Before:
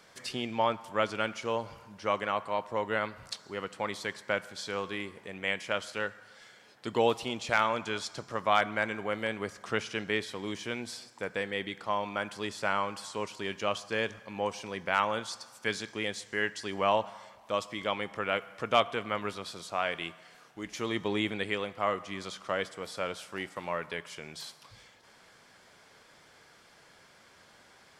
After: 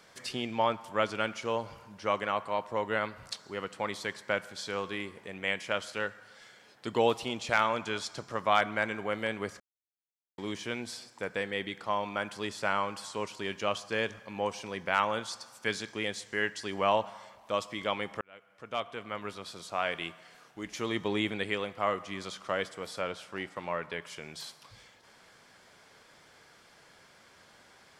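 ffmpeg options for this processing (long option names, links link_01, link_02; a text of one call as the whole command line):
ffmpeg -i in.wav -filter_complex "[0:a]asettb=1/sr,asplit=3[link_01][link_02][link_03];[link_01]atrim=end=23.014[link_04];[link_02]atrim=start=23.01:end=24.02,asetpts=PTS-STARTPTS,afade=type=in:duration=0.004:curve=qsin,afade=type=out:start_time=1.006:duration=0.004:curve=qsin,highshelf=frequency=7000:gain=-10[link_05];[link_03]atrim=start=24.016[link_06];[link_04][link_05]acrossfade=duration=0.004:curve1=hsin:curve2=qsin[link_07];[link_07][link_06]acrossfade=duration=0.004:curve1=qsin:curve2=hsin,asplit=4[link_08][link_09][link_10][link_11];[link_08]atrim=end=9.6,asetpts=PTS-STARTPTS,afade=type=out:start_time=9.596:duration=0.004:curve=hsin[link_12];[link_09]atrim=start=9.6:end=10.38,asetpts=PTS-STARTPTS,volume=0[link_13];[link_10]atrim=start=10.38:end=18.21,asetpts=PTS-STARTPTS,afade=type=in:duration=0.004:curve=hsin,afade=type=out:start_time=7.826:duration=0.004:curve=hsin[link_14];[link_11]atrim=start=18.21,asetpts=PTS-STARTPTS,afade=type=in:duration=1.68[link_15];[link_12][link_13][link_14][link_15]concat=n=4:v=0:a=1" out.wav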